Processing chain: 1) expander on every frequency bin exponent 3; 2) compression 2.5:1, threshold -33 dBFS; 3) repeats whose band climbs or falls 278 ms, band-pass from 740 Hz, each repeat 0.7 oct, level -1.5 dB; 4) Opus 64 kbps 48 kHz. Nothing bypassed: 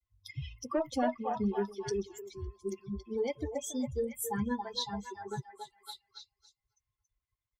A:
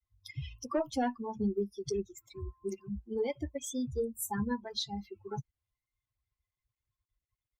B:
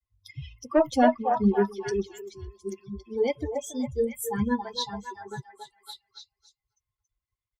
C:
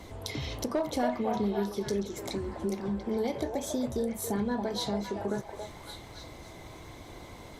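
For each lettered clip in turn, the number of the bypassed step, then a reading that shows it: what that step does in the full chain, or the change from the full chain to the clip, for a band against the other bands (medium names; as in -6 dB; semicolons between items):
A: 3, momentary loudness spread change -5 LU; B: 2, mean gain reduction 4.0 dB; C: 1, 1 kHz band -1.5 dB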